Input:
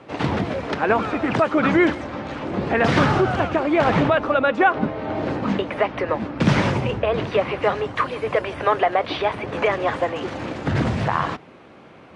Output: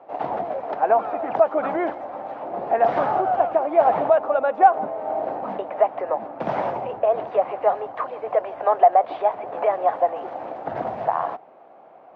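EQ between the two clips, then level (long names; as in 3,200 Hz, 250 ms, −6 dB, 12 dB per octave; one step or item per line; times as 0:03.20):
resonant band-pass 720 Hz, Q 4.4
+7.0 dB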